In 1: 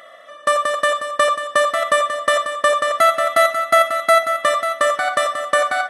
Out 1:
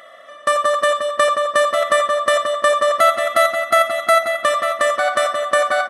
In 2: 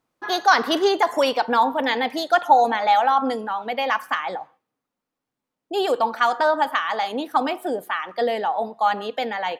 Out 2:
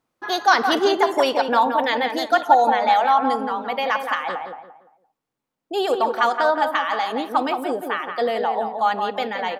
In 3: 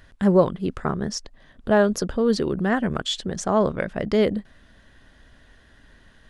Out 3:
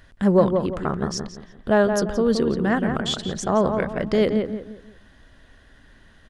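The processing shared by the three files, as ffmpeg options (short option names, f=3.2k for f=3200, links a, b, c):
-filter_complex "[0:a]asplit=2[a][b];[b]adelay=172,lowpass=f=2.1k:p=1,volume=-5.5dB,asplit=2[c][d];[d]adelay=172,lowpass=f=2.1k:p=1,volume=0.34,asplit=2[e][f];[f]adelay=172,lowpass=f=2.1k:p=1,volume=0.34,asplit=2[g][h];[h]adelay=172,lowpass=f=2.1k:p=1,volume=0.34[i];[a][c][e][g][i]amix=inputs=5:normalize=0"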